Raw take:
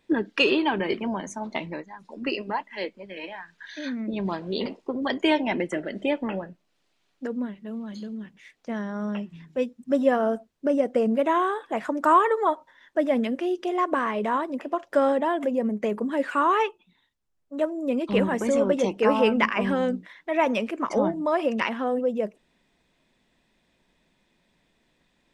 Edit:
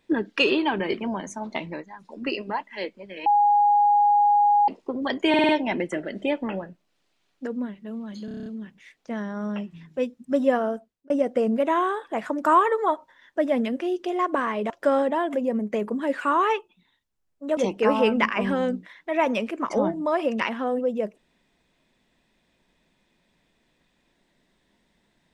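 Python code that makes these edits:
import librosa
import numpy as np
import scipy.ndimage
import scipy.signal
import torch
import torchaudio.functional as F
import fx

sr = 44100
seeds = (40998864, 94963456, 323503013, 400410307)

y = fx.edit(x, sr, fx.bleep(start_s=3.26, length_s=1.42, hz=824.0, db=-15.0),
    fx.stutter(start_s=5.29, slice_s=0.05, count=5),
    fx.stutter(start_s=8.05, slice_s=0.03, count=8),
    fx.fade_out_span(start_s=10.13, length_s=0.56),
    fx.cut(start_s=14.29, length_s=0.51),
    fx.cut(start_s=17.67, length_s=1.1), tone=tone)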